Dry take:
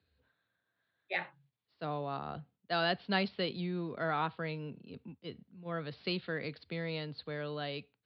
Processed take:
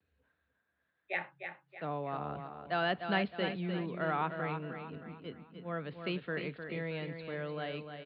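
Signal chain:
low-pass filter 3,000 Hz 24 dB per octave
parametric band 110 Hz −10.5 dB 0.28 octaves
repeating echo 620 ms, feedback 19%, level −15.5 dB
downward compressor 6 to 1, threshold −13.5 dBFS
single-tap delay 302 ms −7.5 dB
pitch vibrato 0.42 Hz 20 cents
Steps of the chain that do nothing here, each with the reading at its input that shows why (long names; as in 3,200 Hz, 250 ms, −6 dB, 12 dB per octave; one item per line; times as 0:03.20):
downward compressor, threshold −13.5 dBFS: peak of its input −18.5 dBFS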